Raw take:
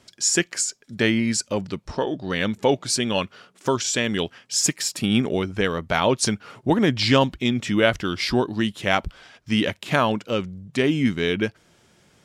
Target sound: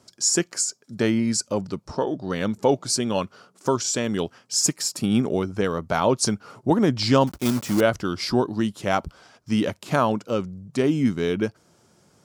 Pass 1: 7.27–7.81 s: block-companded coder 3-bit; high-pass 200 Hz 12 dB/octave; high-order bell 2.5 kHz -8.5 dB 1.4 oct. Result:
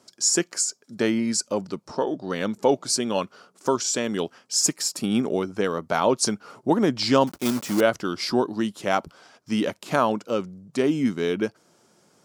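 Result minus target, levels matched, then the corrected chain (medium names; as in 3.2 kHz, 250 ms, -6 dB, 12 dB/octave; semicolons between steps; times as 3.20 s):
125 Hz band -5.5 dB
7.27–7.81 s: block-companded coder 3-bit; high-pass 75 Hz 12 dB/octave; high-order bell 2.5 kHz -8.5 dB 1.4 oct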